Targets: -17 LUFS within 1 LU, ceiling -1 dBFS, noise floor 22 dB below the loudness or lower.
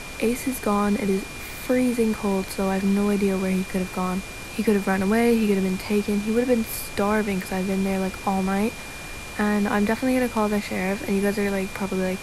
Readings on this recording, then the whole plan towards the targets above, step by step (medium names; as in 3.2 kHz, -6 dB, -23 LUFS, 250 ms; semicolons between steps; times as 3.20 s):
steady tone 2.4 kHz; tone level -39 dBFS; noise floor -36 dBFS; noise floor target -46 dBFS; loudness -24.0 LUFS; peak level -8.5 dBFS; loudness target -17.0 LUFS
-> band-stop 2.4 kHz, Q 30; noise print and reduce 10 dB; trim +7 dB